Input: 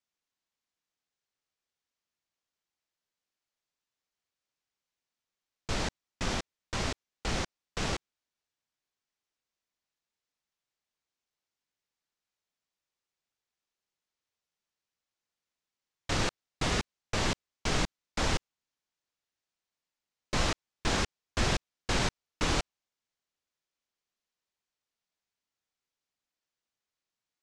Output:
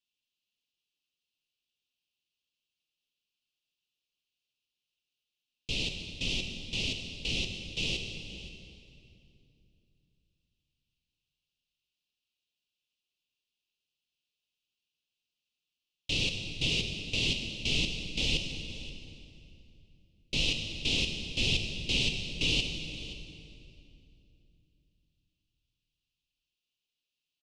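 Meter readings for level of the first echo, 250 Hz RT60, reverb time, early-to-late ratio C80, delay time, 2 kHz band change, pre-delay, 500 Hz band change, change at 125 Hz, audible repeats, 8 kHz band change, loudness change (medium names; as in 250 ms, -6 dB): -17.0 dB, 3.5 s, 2.7 s, 5.5 dB, 524 ms, +1.5 dB, 5 ms, -6.5 dB, -1.5 dB, 1, -2.5 dB, +2.0 dB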